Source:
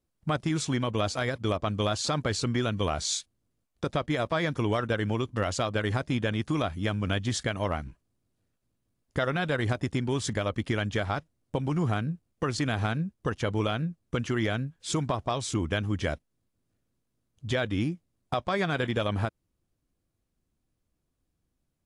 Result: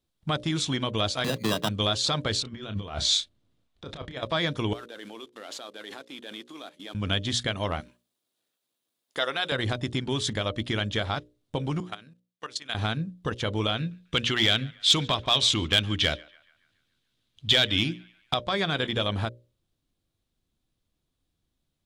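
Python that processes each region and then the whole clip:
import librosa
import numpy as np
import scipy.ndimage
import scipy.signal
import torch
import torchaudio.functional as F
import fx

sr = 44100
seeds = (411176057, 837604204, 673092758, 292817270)

y = fx.chain(x, sr, fx.sample_hold(seeds[0], rate_hz=2200.0, jitter_pct=0),
    fx.highpass_res(hz=160.0, q=2.0),
    fx.band_squash(depth_pct=40), at=(1.24, 1.69))
y = fx.chain(y, sr, fx.lowpass(hz=3200.0, slope=6),
    fx.over_compress(threshold_db=-33.0, ratio=-0.5),
    fx.doubler(ms=30.0, db=-10.0), at=(2.42, 4.23))
y = fx.chain(y, sr, fx.cvsd(bps=64000),
    fx.highpass(hz=270.0, slope=24),
    fx.level_steps(step_db=21), at=(4.73, 6.95))
y = fx.chain(y, sr, fx.highpass(hz=410.0, slope=12),
    fx.high_shelf(hz=9100.0, db=10.0), at=(7.8, 9.52))
y = fx.chain(y, sr, fx.highpass(hz=1100.0, slope=6),
    fx.level_steps(step_db=17), at=(11.8, 12.75))
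y = fx.chain(y, sr, fx.peak_eq(hz=3100.0, db=11.0, octaves=1.8),
    fx.clip_hard(threshold_db=-18.5),
    fx.echo_banded(ms=142, feedback_pct=54, hz=1500.0, wet_db=-22), at=(13.77, 18.34))
y = fx.peak_eq(y, sr, hz=3600.0, db=10.5, octaves=0.62)
y = fx.hum_notches(y, sr, base_hz=60, count=10)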